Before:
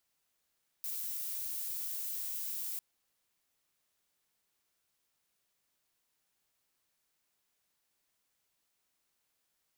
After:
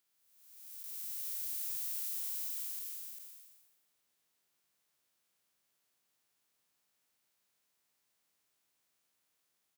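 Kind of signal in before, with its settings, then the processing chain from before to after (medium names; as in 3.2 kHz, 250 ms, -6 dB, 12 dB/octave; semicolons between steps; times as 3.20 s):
noise violet, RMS -38.5 dBFS 1.95 s
spectral blur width 653 ms; high-pass 91 Hz; on a send: delay 395 ms -3 dB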